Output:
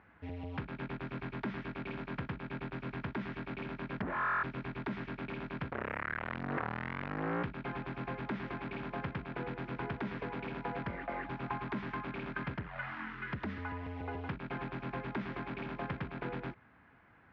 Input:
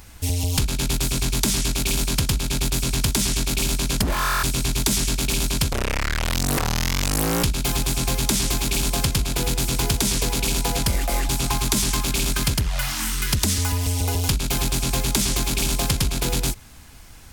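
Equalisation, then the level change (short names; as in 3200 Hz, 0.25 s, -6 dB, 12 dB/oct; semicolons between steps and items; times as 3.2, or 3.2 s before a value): HPF 150 Hz 12 dB/oct; ladder low-pass 2100 Hz, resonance 40%; air absorption 170 m; -3.0 dB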